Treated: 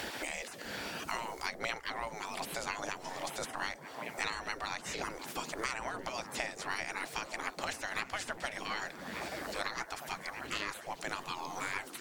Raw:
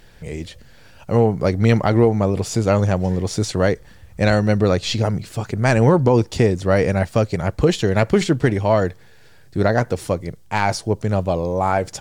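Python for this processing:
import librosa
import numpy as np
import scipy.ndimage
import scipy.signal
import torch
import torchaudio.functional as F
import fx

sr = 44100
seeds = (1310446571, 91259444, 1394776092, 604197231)

p1 = fx.spec_gate(x, sr, threshold_db=-20, keep='weak')
p2 = p1 + fx.echo_stepped(p1, sr, ms=395, hz=180.0, octaves=0.7, feedback_pct=70, wet_db=-3.5, dry=0)
p3 = fx.band_squash(p2, sr, depth_pct=100)
y = p3 * librosa.db_to_amplitude(-5.5)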